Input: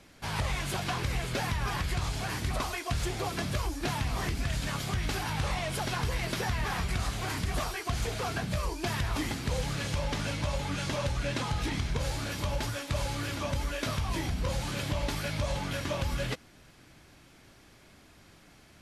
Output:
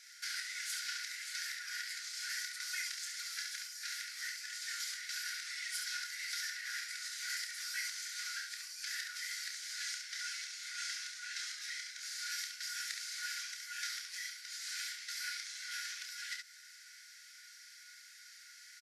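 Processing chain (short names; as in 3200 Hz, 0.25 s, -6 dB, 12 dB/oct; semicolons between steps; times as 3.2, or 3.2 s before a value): bell 2700 Hz -6.5 dB 1.2 oct; compressor, threshold -38 dBFS, peak gain reduction 11 dB; rippled Chebyshev high-pass 1400 Hz, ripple 9 dB; early reflections 29 ms -6.5 dB, 69 ms -5 dB; gain +10.5 dB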